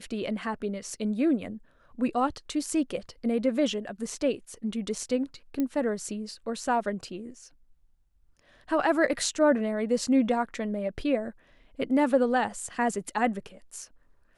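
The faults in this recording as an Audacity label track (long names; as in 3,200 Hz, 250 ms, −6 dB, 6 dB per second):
5.600000	5.600000	click −17 dBFS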